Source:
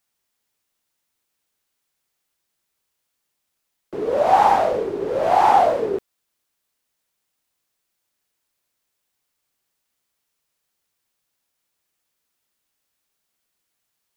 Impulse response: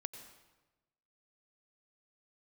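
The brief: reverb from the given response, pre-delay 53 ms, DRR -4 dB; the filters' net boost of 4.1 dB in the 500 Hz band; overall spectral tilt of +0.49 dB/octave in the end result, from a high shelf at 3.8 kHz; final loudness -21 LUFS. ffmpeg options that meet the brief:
-filter_complex "[0:a]equalizer=f=500:t=o:g=5,highshelf=f=3800:g=7,asplit=2[s0][s1];[1:a]atrim=start_sample=2205,adelay=53[s2];[s1][s2]afir=irnorm=-1:irlink=0,volume=2.11[s3];[s0][s3]amix=inputs=2:normalize=0,volume=0.282"

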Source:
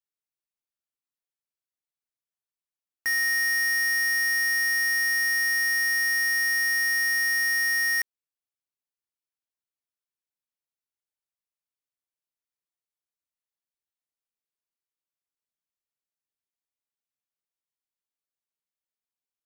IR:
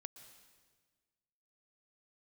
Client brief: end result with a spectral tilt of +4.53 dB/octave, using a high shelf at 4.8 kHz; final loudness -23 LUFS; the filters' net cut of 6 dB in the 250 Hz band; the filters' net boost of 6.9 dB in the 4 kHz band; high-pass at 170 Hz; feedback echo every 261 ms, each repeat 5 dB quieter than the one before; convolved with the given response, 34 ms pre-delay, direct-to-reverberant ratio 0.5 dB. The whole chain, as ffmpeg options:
-filter_complex "[0:a]highpass=170,equalizer=f=250:t=o:g=-6,equalizer=f=4000:t=o:g=4.5,highshelf=f=4800:g=8,aecho=1:1:261|522|783|1044|1305|1566|1827:0.562|0.315|0.176|0.0988|0.0553|0.031|0.0173,asplit=2[s0][s1];[1:a]atrim=start_sample=2205,adelay=34[s2];[s1][s2]afir=irnorm=-1:irlink=0,volume=1.78[s3];[s0][s3]amix=inputs=2:normalize=0,volume=0.473"

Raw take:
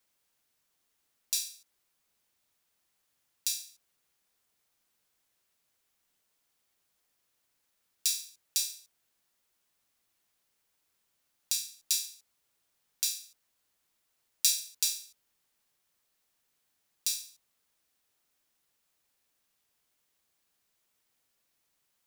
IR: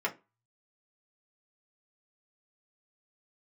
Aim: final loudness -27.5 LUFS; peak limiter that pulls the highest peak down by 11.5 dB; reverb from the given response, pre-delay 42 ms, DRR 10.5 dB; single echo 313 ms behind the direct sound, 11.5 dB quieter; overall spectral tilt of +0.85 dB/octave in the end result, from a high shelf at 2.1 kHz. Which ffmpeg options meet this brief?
-filter_complex "[0:a]highshelf=f=2100:g=-3.5,alimiter=limit=0.126:level=0:latency=1,aecho=1:1:313:0.266,asplit=2[s0][s1];[1:a]atrim=start_sample=2205,adelay=42[s2];[s1][s2]afir=irnorm=-1:irlink=0,volume=0.133[s3];[s0][s3]amix=inputs=2:normalize=0,volume=3.55"

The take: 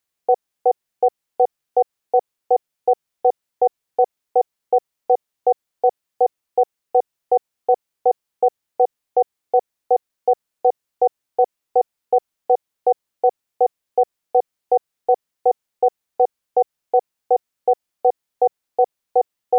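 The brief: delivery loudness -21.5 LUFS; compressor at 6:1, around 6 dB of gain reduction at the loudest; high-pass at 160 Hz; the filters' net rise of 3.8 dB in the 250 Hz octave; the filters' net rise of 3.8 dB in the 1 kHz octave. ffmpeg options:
-af "highpass=160,equalizer=f=250:t=o:g=7,equalizer=f=1000:t=o:g=5.5,acompressor=threshold=0.2:ratio=6,volume=1.26"

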